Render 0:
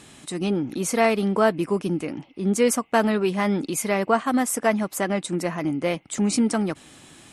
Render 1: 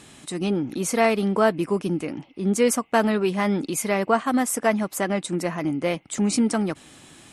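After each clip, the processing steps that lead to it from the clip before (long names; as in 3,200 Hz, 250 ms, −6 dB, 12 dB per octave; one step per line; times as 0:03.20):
no processing that can be heard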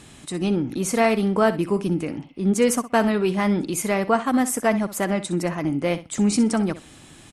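low-shelf EQ 100 Hz +11 dB
repeating echo 63 ms, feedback 17%, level −14 dB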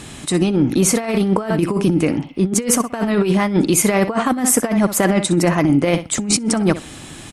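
compressor whose output falls as the input rises −23 dBFS, ratio −0.5
level +8 dB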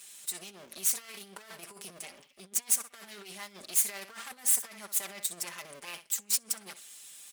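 lower of the sound and its delayed copy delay 5 ms
first difference
level −8 dB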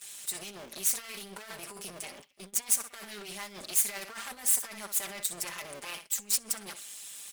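mu-law and A-law mismatch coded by mu
noise gate −48 dBFS, range −13 dB
amplitude modulation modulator 210 Hz, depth 40%
level +2 dB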